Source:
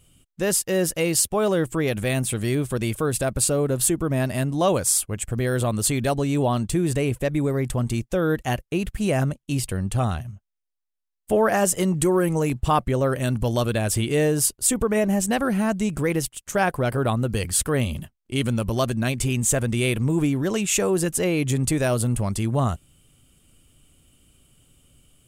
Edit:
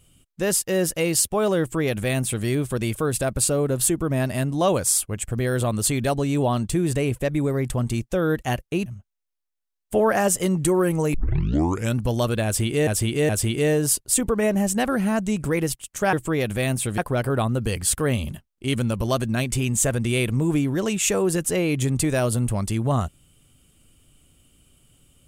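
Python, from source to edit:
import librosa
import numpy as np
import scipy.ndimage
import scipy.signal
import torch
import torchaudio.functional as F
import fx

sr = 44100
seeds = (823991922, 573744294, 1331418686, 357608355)

y = fx.edit(x, sr, fx.duplicate(start_s=1.6, length_s=0.85, to_s=16.66),
    fx.cut(start_s=8.86, length_s=1.37),
    fx.tape_start(start_s=12.51, length_s=0.81),
    fx.repeat(start_s=13.82, length_s=0.42, count=3), tone=tone)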